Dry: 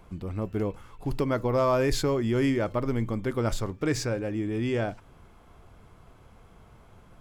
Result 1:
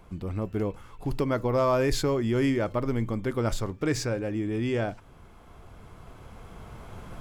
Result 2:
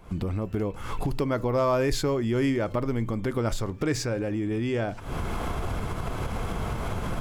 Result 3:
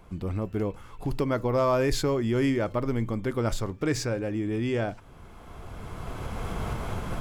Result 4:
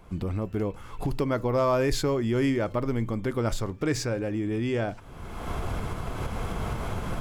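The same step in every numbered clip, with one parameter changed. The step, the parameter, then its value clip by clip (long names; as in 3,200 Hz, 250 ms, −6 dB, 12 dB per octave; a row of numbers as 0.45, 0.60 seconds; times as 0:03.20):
camcorder AGC, rising by: 5.1, 88, 14, 35 dB per second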